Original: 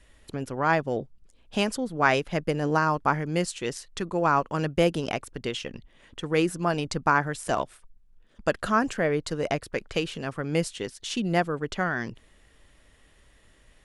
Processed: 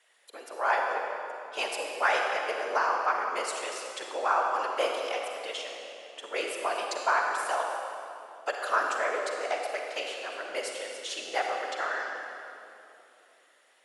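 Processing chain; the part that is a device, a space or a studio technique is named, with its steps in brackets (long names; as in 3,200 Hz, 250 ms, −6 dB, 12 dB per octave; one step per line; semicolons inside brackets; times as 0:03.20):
whispering ghost (random phases in short frames; high-pass filter 530 Hz 24 dB per octave; convolution reverb RT60 2.9 s, pre-delay 38 ms, DRR 1 dB)
level −3.5 dB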